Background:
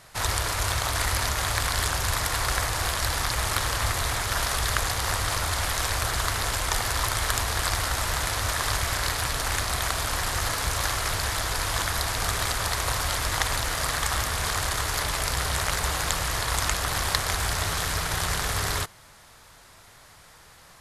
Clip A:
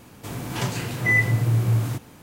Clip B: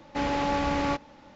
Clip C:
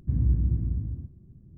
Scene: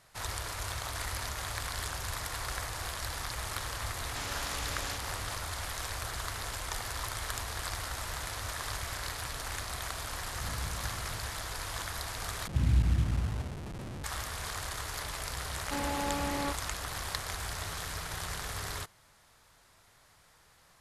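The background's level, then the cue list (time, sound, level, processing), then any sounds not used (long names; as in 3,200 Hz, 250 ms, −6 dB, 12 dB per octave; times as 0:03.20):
background −11 dB
0:04.00: mix in B −12.5 dB + every bin compressed towards the loudest bin 4 to 1
0:10.32: mix in C −16 dB
0:12.47: overwrite with C −2.5 dB + linear delta modulator 64 kbit/s, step −32 dBFS
0:15.56: mix in B −7.5 dB
not used: A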